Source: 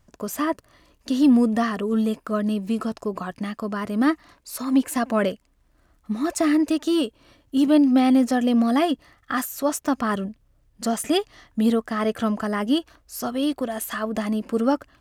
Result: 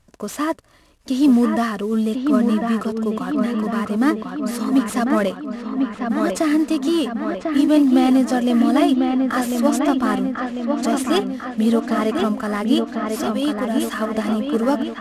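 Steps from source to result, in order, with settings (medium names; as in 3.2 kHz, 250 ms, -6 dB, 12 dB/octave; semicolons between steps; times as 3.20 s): CVSD coder 64 kbps; feedback echo behind a low-pass 1047 ms, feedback 61%, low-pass 3 kHz, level -4 dB; trim +2 dB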